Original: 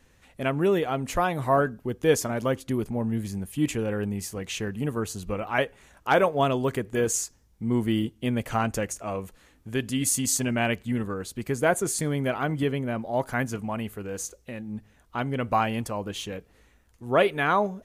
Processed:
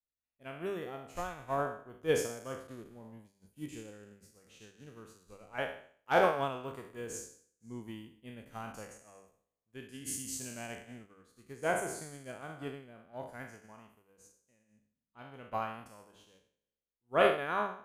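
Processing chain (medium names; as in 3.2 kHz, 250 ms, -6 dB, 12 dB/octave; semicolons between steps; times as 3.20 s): spectral sustain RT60 1.30 s; de-hum 98.62 Hz, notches 3; upward expansion 2.5:1, over -41 dBFS; trim -7 dB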